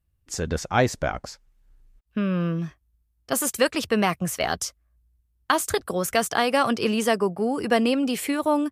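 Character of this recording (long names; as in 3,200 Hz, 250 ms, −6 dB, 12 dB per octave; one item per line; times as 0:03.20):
background noise floor −70 dBFS
spectral slope −4.0 dB per octave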